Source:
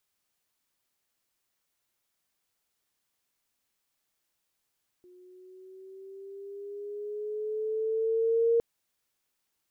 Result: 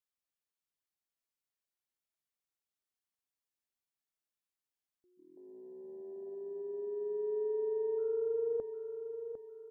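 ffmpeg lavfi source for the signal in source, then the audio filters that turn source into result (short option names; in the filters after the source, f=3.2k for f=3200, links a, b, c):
-f lavfi -i "aevalsrc='pow(10,(-20+32*(t/3.56-1))/20)*sin(2*PI*359*3.56/(4.5*log(2)/12)*(exp(4.5*log(2)/12*t/3.56)-1))':d=3.56:s=44100"
-filter_complex "[0:a]afwtdn=0.01,alimiter=level_in=6.5dB:limit=-24dB:level=0:latency=1,volume=-6.5dB,asplit=2[a][b];[b]aecho=0:1:753|1506|2259|3012:0.376|0.147|0.0572|0.0223[c];[a][c]amix=inputs=2:normalize=0"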